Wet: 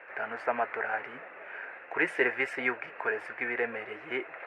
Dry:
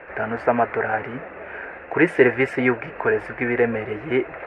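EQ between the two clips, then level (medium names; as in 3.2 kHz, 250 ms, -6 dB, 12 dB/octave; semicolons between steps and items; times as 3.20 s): high-pass 1.2 kHz 6 dB/octave; -4.5 dB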